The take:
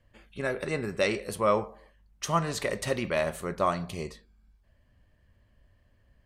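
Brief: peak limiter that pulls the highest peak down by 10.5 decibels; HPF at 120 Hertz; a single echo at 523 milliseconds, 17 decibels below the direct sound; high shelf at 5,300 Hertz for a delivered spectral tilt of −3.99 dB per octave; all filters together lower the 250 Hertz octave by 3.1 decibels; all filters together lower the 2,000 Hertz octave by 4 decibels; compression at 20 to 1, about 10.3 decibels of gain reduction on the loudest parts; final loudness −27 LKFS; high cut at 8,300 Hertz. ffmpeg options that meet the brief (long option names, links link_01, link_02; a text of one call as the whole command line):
ffmpeg -i in.wav -af "highpass=120,lowpass=8300,equalizer=frequency=250:width_type=o:gain=-4,equalizer=frequency=2000:width_type=o:gain=-6,highshelf=frequency=5300:gain=8,acompressor=threshold=-31dB:ratio=20,alimiter=level_in=6dB:limit=-24dB:level=0:latency=1,volume=-6dB,aecho=1:1:523:0.141,volume=14.5dB" out.wav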